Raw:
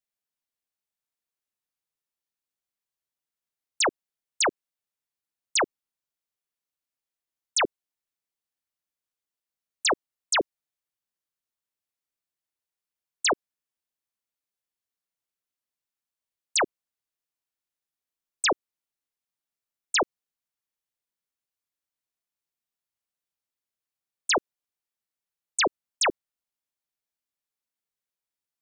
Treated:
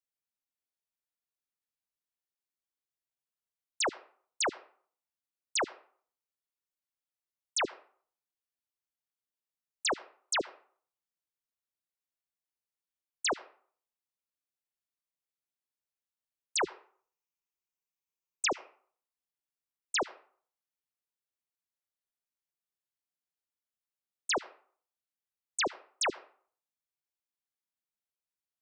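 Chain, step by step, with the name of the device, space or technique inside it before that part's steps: 16.61–18.49 ripple EQ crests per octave 0.76, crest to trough 9 dB; filtered reverb send (on a send: HPF 550 Hz 12 dB/oct + LPF 5300 Hz 12 dB/oct + reverb RT60 0.50 s, pre-delay 67 ms, DRR 17.5 dB); on the sum: gain -7 dB

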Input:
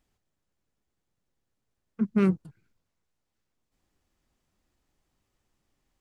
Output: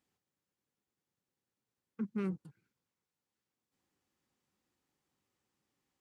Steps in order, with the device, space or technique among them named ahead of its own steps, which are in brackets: PA system with an anti-feedback notch (HPF 130 Hz 12 dB/oct; Butterworth band-stop 650 Hz, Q 6.9; limiter -23.5 dBFS, peak gain reduction 9.5 dB); gain -5 dB

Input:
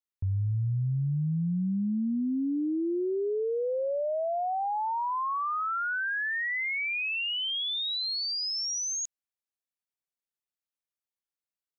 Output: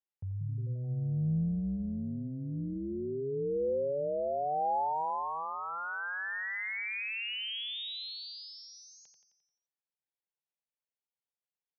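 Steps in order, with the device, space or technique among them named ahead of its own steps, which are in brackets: frequency-shifting delay pedal into a guitar cabinet (frequency-shifting echo 87 ms, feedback 54%, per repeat -120 Hz, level -6.5 dB; speaker cabinet 86–3800 Hz, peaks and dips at 160 Hz +7 dB, 280 Hz -9 dB, 500 Hz +6 dB, 830 Hz +7 dB, 1200 Hz -5 dB); gain -7 dB

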